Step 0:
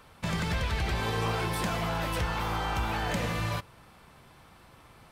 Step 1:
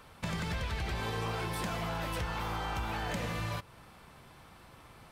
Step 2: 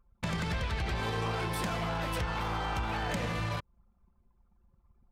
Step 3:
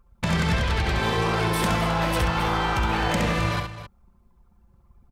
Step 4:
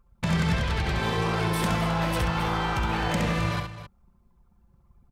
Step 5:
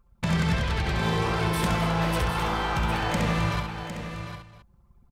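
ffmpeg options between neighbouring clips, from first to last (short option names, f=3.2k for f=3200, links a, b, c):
-af "acompressor=threshold=-36dB:ratio=2"
-af "anlmdn=0.158,volume=2.5dB"
-af "aecho=1:1:67|264:0.562|0.224,volume=8.5dB"
-af "equalizer=f=150:w=2.4:g=4.5,volume=-3.5dB"
-af "aecho=1:1:756:0.335"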